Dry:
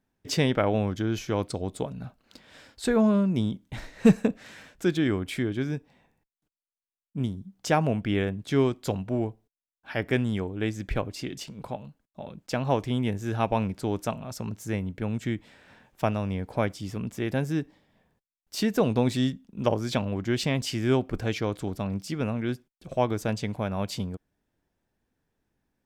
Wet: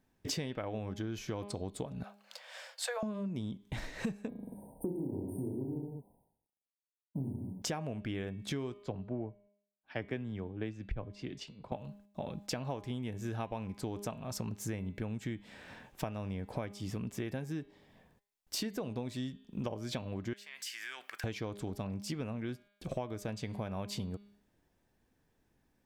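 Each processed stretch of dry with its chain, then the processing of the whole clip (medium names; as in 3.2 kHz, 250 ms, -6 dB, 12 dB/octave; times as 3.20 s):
2.03–3.03 s: steep high-pass 500 Hz 96 dB/octave + band-stop 3.9 kHz, Q 19
4.29–7.62 s: companding laws mixed up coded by A + brick-wall FIR band-stop 1–8.5 kHz + reverse bouncing-ball echo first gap 30 ms, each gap 1.1×, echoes 6, each echo -2 dB
8.83–11.72 s: tape spacing loss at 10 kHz 21 dB + three bands expanded up and down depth 100%
20.33–21.24 s: resonant high-pass 1.7 kHz, resonance Q 2.4 + treble shelf 10 kHz +10.5 dB + compression, threshold -43 dBFS
whole clip: band-stop 1.4 kHz, Q 19; de-hum 203.6 Hz, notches 23; compression 12:1, threshold -38 dBFS; trim +3.5 dB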